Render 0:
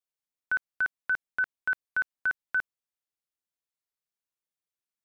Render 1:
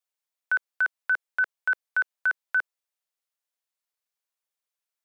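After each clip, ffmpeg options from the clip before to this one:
ffmpeg -i in.wav -af "highpass=frequency=460:width=0.5412,highpass=frequency=460:width=1.3066,volume=3.5dB" out.wav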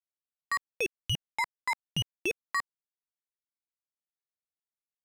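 ffmpeg -i in.wav -af "adynamicsmooth=sensitivity=3.5:basefreq=660,crystalizer=i=1:c=0,aeval=exprs='val(0)*sin(2*PI*910*n/s+910*0.6/0.96*sin(2*PI*0.96*n/s))':channel_layout=same,volume=-3.5dB" out.wav

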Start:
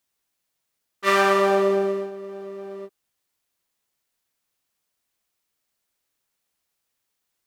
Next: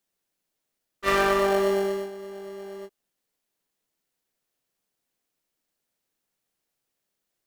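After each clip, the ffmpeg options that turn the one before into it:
ffmpeg -i in.wav -filter_complex "[0:a]asplit=2[link_01][link_02];[link_02]acrusher=samples=36:mix=1:aa=0.000001,volume=-8.5dB[link_03];[link_01][link_03]amix=inputs=2:normalize=0,equalizer=frequency=66:width_type=o:width=1.7:gain=-10,volume=-4dB" out.wav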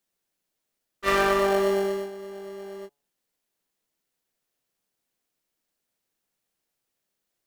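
ffmpeg -i in.wav -af "bandreject=frequency=142.3:width_type=h:width=4,bandreject=frequency=284.6:width_type=h:width=4,bandreject=frequency=426.9:width_type=h:width=4,bandreject=frequency=569.2:width_type=h:width=4,bandreject=frequency=711.5:width_type=h:width=4,bandreject=frequency=853.8:width_type=h:width=4,bandreject=frequency=996.1:width_type=h:width=4,bandreject=frequency=1138.4:width_type=h:width=4,bandreject=frequency=1280.7:width_type=h:width=4" out.wav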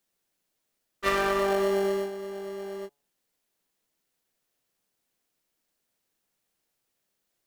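ffmpeg -i in.wav -af "acompressor=threshold=-23dB:ratio=6,volume=2dB" out.wav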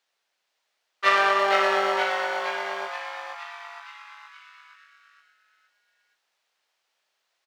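ffmpeg -i in.wav -filter_complex "[0:a]acrossover=split=550 5600:gain=0.0708 1 0.112[link_01][link_02][link_03];[link_01][link_02][link_03]amix=inputs=3:normalize=0,asplit=2[link_04][link_05];[link_05]asplit=7[link_06][link_07][link_08][link_09][link_10][link_11][link_12];[link_06]adelay=469,afreqshift=150,volume=-5dB[link_13];[link_07]adelay=938,afreqshift=300,volume=-10dB[link_14];[link_08]adelay=1407,afreqshift=450,volume=-15.1dB[link_15];[link_09]adelay=1876,afreqshift=600,volume=-20.1dB[link_16];[link_10]adelay=2345,afreqshift=750,volume=-25.1dB[link_17];[link_11]adelay=2814,afreqshift=900,volume=-30.2dB[link_18];[link_12]adelay=3283,afreqshift=1050,volume=-35.2dB[link_19];[link_13][link_14][link_15][link_16][link_17][link_18][link_19]amix=inputs=7:normalize=0[link_20];[link_04][link_20]amix=inputs=2:normalize=0,volume=8dB" out.wav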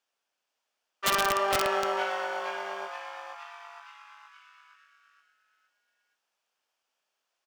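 ffmpeg -i in.wav -af "equalizer=frequency=250:width_type=o:width=0.33:gain=6,equalizer=frequency=2000:width_type=o:width=0.33:gain=-7,equalizer=frequency=4000:width_type=o:width=0.33:gain=-7,aeval=exprs='(mod(4.47*val(0)+1,2)-1)/4.47':channel_layout=same,volume=-4.5dB" out.wav

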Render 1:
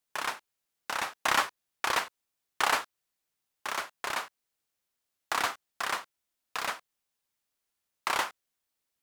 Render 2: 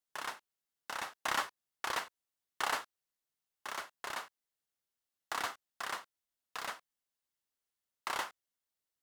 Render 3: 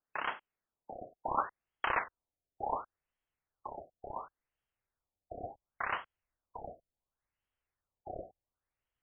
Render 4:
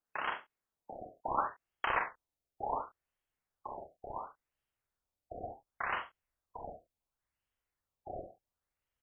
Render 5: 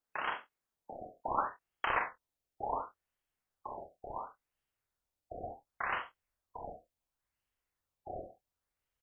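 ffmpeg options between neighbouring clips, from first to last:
ffmpeg -i in.wav -af "bandreject=frequency=2400:width=14,volume=-7.5dB" out.wav
ffmpeg -i in.wav -af "asubboost=boost=4.5:cutoff=100,afftfilt=real='re*lt(b*sr/1024,730*pow(3400/730,0.5+0.5*sin(2*PI*0.7*pts/sr)))':imag='im*lt(b*sr/1024,730*pow(3400/730,0.5+0.5*sin(2*PI*0.7*pts/sr)))':win_size=1024:overlap=0.75,volume=5dB" out.wav
ffmpeg -i in.wav -af "aecho=1:1:45|72:0.501|0.224,volume=-1dB" out.wav
ffmpeg -i in.wav -filter_complex "[0:a]asplit=2[link_01][link_02];[link_02]adelay=23,volume=-13dB[link_03];[link_01][link_03]amix=inputs=2:normalize=0" out.wav

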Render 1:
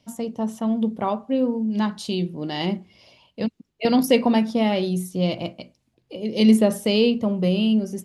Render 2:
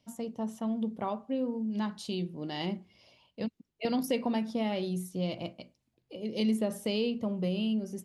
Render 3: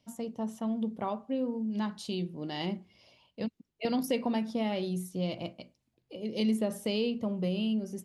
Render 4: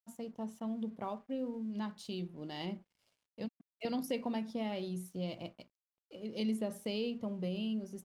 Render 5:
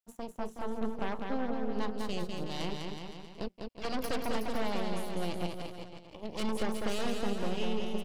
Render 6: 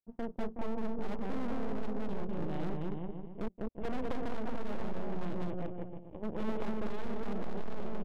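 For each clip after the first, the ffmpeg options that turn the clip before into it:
ffmpeg -i in.wav -af "acompressor=threshold=-20dB:ratio=2,volume=-8.5dB" out.wav
ffmpeg -i in.wav -af anull out.wav
ffmpeg -i in.wav -af "aeval=exprs='sgn(val(0))*max(abs(val(0))-0.00112,0)':channel_layout=same,volume=-6dB" out.wav
ffmpeg -i in.wav -af "aeval=exprs='0.0562*(cos(1*acos(clip(val(0)/0.0562,-1,1)))-cos(1*PI/2))+0.0224*(cos(6*acos(clip(val(0)/0.0562,-1,1)))-cos(6*PI/2))':channel_layout=same,aecho=1:1:200|370|514.5|637.3|741.7:0.631|0.398|0.251|0.158|0.1,volume=-2dB" out.wav
ffmpeg -i in.wav -af "adynamicsmooth=sensitivity=1.5:basefreq=520,aresample=8000,aresample=44100,aeval=exprs='clip(val(0),-1,0.0237)':channel_layout=same,volume=5.5dB" out.wav

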